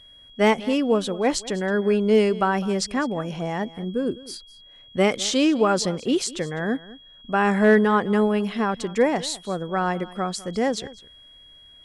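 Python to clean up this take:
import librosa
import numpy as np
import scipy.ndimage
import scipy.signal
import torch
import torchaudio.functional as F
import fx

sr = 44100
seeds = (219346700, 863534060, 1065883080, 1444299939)

y = fx.fix_declip(x, sr, threshold_db=-8.5)
y = fx.notch(y, sr, hz=3300.0, q=30.0)
y = fx.fix_echo_inverse(y, sr, delay_ms=204, level_db=-19.0)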